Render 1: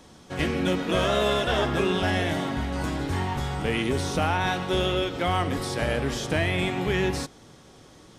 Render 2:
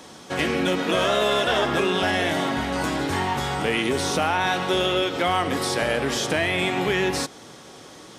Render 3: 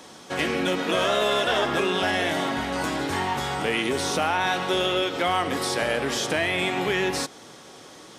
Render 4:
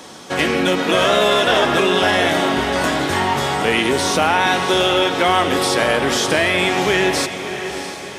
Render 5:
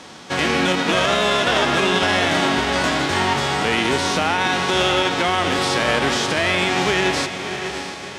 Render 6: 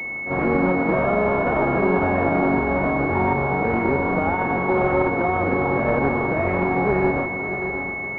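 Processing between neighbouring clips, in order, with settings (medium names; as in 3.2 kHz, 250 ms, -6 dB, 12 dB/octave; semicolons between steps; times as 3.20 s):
in parallel at -0.5 dB: peak limiter -17.5 dBFS, peak gain reduction 7 dB; on the sum: high-pass 320 Hz 6 dB/octave; compression 1.5:1, threshold -28 dBFS, peak gain reduction 4.5 dB; trim +3.5 dB
bass shelf 190 Hz -5 dB; trim -1 dB
echo that smears into a reverb 658 ms, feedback 45%, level -9.5 dB; trim +7.5 dB
formants flattened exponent 0.6; peak limiter -6.5 dBFS, peak gain reduction 6 dB; distance through air 87 m
reverse echo 43 ms -9.5 dB; class-D stage that switches slowly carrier 2.2 kHz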